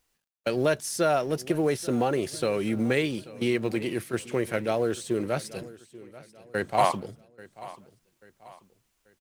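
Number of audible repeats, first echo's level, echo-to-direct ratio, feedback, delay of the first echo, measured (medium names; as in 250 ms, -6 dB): 3, -19.0 dB, -18.0 dB, 41%, 837 ms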